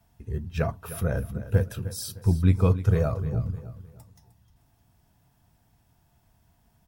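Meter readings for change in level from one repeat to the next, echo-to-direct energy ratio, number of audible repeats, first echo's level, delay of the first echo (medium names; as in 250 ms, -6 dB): -9.5 dB, -13.5 dB, 3, -14.0 dB, 306 ms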